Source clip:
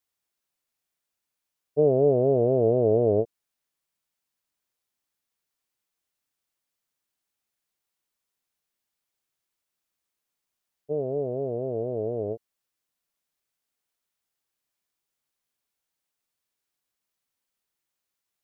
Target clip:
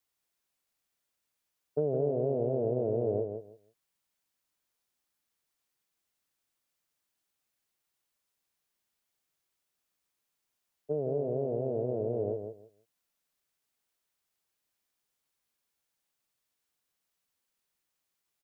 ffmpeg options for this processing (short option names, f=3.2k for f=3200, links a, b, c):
-filter_complex "[0:a]acrossover=split=150|870[a][b][c];[a]acompressor=threshold=-42dB:ratio=4[d];[b]acompressor=threshold=-30dB:ratio=4[e];[c]acompressor=threshold=-50dB:ratio=4[f];[d][e][f]amix=inputs=3:normalize=0,aecho=1:1:162|324|486:0.447|0.0849|0.0161"